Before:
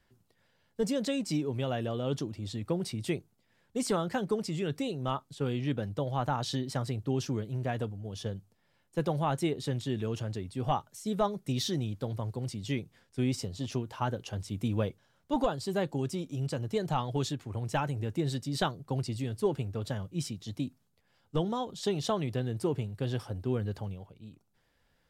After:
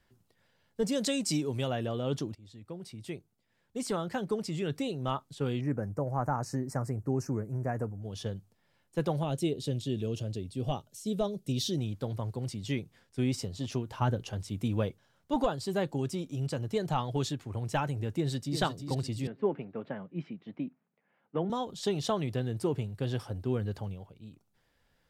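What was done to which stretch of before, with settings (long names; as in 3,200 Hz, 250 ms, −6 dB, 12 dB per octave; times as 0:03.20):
0:00.92–0:01.68: parametric band 8,600 Hz +9.5 dB 2 octaves
0:02.35–0:04.75: fade in, from −17.5 dB
0:05.61–0:08.02: Butterworth band-reject 3,400 Hz, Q 0.78
0:09.23–0:11.78: flat-topped bell 1,300 Hz −11 dB
0:13.90–0:14.32: low-shelf EQ 210 Hz +8 dB
0:18.16–0:18.59: delay throw 350 ms, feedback 40%, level −7 dB
0:19.27–0:21.50: Chebyshev band-pass filter 180–2,300 Hz, order 3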